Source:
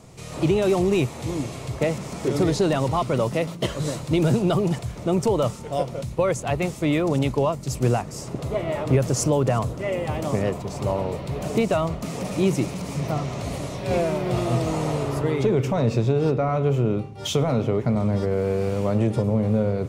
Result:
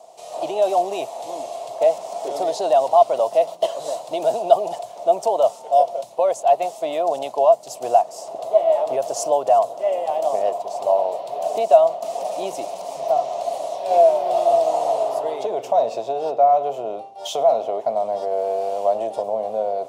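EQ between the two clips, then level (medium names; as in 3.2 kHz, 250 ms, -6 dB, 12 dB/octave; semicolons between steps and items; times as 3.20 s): resonant high-pass 680 Hz, resonance Q 7.9; high-order bell 1.7 kHz -9.5 dB 1.2 oct; -2.0 dB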